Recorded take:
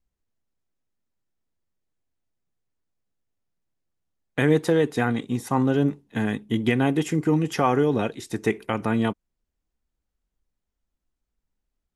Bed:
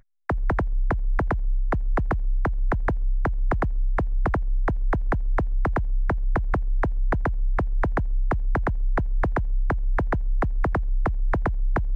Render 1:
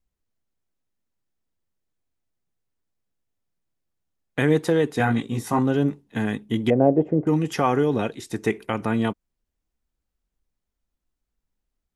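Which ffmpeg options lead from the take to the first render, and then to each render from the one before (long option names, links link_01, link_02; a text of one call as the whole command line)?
ffmpeg -i in.wav -filter_complex "[0:a]asettb=1/sr,asplit=3[link_01][link_02][link_03];[link_01]atrim=end=4.984[link_04];[link_02]atrim=start=4.98:end=5.59,asetpts=PTS-STARTPTS,afade=type=in:duration=0.004:curve=qsin,afade=type=out:start_time=0.606:duration=0.004:curve=qsin,asplit=2[link_05][link_06];[link_06]adelay=18,volume=-2dB[link_07];[link_05][link_07]amix=inputs=2:normalize=0,atrim=end_sample=26901[link_08];[link_03]atrim=start=5.586[link_09];[link_04][link_08]acrossfade=duration=0.004:curve1=hsin:curve2=qsin[link_10];[link_10][link_09]acrossfade=duration=0.004:curve1=qsin:curve2=hsin,asettb=1/sr,asplit=3[link_11][link_12][link_13];[link_11]atrim=end=6.704[link_14];[link_12]atrim=start=6.7:end=7.27,asetpts=PTS-STARTPTS,afade=type=in:duration=0.004:curve=qsin,afade=type=out:start_time=0.566:duration=0.004:curve=qsin,lowpass=frequency=600:width_type=q:width=6.3[link_15];[link_13]atrim=start=7.266[link_16];[link_14][link_15]acrossfade=duration=0.004:curve1=hsin:curve2=qsin[link_17];[link_17][link_16]acrossfade=duration=0.004:curve1=qsin:curve2=hsin" out.wav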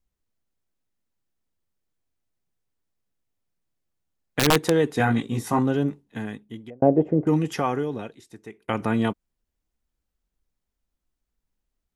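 ffmpeg -i in.wav -filter_complex "[0:a]asettb=1/sr,asplit=3[link_01][link_02][link_03];[link_01]atrim=end=4.394[link_04];[link_02]atrim=start=4.39:end=4.85,asetpts=PTS-STARTPTS,afade=type=in:duration=0.004:curve=qsin,afade=type=out:start_time=0.456:duration=0.004:curve=qsin,aeval=exprs='(mod(2.99*val(0)+1,2)-1)/2.99':channel_layout=same[link_05];[link_03]atrim=start=4.846[link_06];[link_04][link_05]acrossfade=duration=0.004:curve1=hsin:curve2=qsin[link_07];[link_07][link_06]acrossfade=duration=0.004:curve1=qsin:curve2=hsin,asplit=3[link_08][link_09][link_10];[link_08]atrim=end=6.82,asetpts=PTS-STARTPTS,afade=type=out:start_time=5.51:duration=1.31[link_11];[link_09]atrim=start=6.82:end=8.68,asetpts=PTS-STARTPTS,afade=type=in:duration=0.004:curve=hsin,afade=type=out:start_time=0.55:duration=1.31:curve=qua:silence=0.105925[link_12];[link_10]atrim=start=8.68,asetpts=PTS-STARTPTS,afade=type=in:duration=0.004:curve=hsin:silence=0.105925[link_13];[link_11][link_12][link_13]concat=n=3:v=0:a=1" out.wav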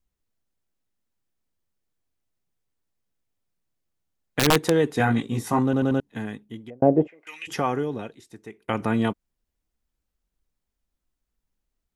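ffmpeg -i in.wav -filter_complex "[0:a]asplit=3[link_01][link_02][link_03];[link_01]afade=type=out:start_time=7.06:duration=0.02[link_04];[link_02]highpass=frequency=2400:width_type=q:width=3.8,afade=type=in:start_time=7.06:duration=0.02,afade=type=out:start_time=7.47:duration=0.02[link_05];[link_03]afade=type=in:start_time=7.47:duration=0.02[link_06];[link_04][link_05][link_06]amix=inputs=3:normalize=0,asplit=5[link_07][link_08][link_09][link_10][link_11];[link_07]atrim=end=5.732[link_12];[link_08]atrim=start=5.638:end=5.732[link_13];[link_09]atrim=start=5.638:end=5.732[link_14];[link_10]atrim=start=5.638:end=5.732[link_15];[link_11]atrim=start=5.998[link_16];[link_12][link_13]acrossfade=duration=0.004:curve1=hsin:curve2=hsin[link_17];[link_17][link_14]acrossfade=duration=0.004:curve1=hsin:curve2=hsin[link_18];[link_18][link_15]acrossfade=duration=0.004:curve1=hsin:curve2=hsin[link_19];[link_19][link_16]acrossfade=duration=0.004:curve1=hsin:curve2=hsin" out.wav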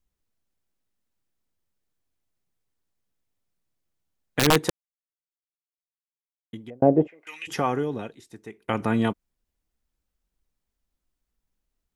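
ffmpeg -i in.wav -filter_complex "[0:a]asplit=3[link_01][link_02][link_03];[link_01]atrim=end=4.7,asetpts=PTS-STARTPTS,afade=type=out:start_time=4.696:duration=0.004:curve=hsin[link_04];[link_02]atrim=start=4.7:end=6.53,asetpts=PTS-STARTPTS,volume=0[link_05];[link_03]atrim=start=6.53,asetpts=PTS-STARTPTS,afade=type=in:duration=0.004:curve=hsin[link_06];[link_04][link_05][link_06]concat=n=3:v=0:a=1" out.wav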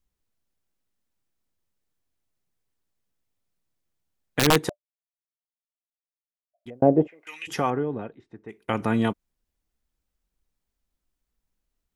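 ffmpeg -i in.wav -filter_complex "[0:a]asettb=1/sr,asplit=3[link_01][link_02][link_03];[link_01]atrim=end=4.694[link_04];[link_02]atrim=start=4.69:end=6.66,asetpts=PTS-STARTPTS,afade=type=in:duration=0.004:curve=qsin,afade=type=out:start_time=1.966:duration=0.004:curve=qsin,asuperpass=centerf=650:order=12:qfactor=5.1[link_05];[link_03]atrim=start=6.656[link_06];[link_04][link_05]acrossfade=duration=0.004:curve1=hsin:curve2=qsin[link_07];[link_07][link_06]acrossfade=duration=0.004:curve1=qsin:curve2=hsin,asettb=1/sr,asplit=3[link_08][link_09][link_10];[link_08]atrim=end=7.704[link_11];[link_09]atrim=start=7.7:end=8.49,asetpts=PTS-STARTPTS,afade=type=in:duration=0.004:curve=qsin,afade=type=out:start_time=0.786:duration=0.004:curve=qsin,lowpass=1700[link_12];[link_10]atrim=start=8.486[link_13];[link_11][link_12]acrossfade=duration=0.004:curve1=hsin:curve2=qsin[link_14];[link_14][link_13]acrossfade=duration=0.004:curve1=qsin:curve2=hsin" out.wav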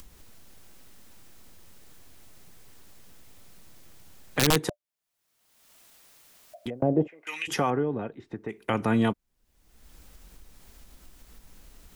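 ffmpeg -i in.wav -filter_complex "[0:a]acrossover=split=160|3500[link_01][link_02][link_03];[link_02]alimiter=limit=-14.5dB:level=0:latency=1:release=68[link_04];[link_01][link_04][link_03]amix=inputs=3:normalize=0,acompressor=mode=upward:threshold=-26dB:ratio=2.5" out.wav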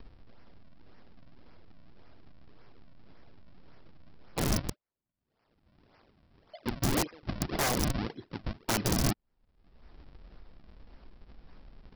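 ffmpeg -i in.wav -af "aresample=11025,acrusher=samples=15:mix=1:aa=0.000001:lfo=1:lforange=24:lforate=1.8,aresample=44100,aeval=exprs='(mod(11.9*val(0)+1,2)-1)/11.9':channel_layout=same" out.wav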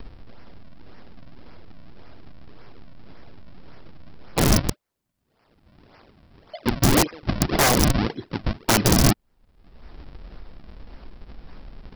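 ffmpeg -i in.wav -af "volume=11dB" out.wav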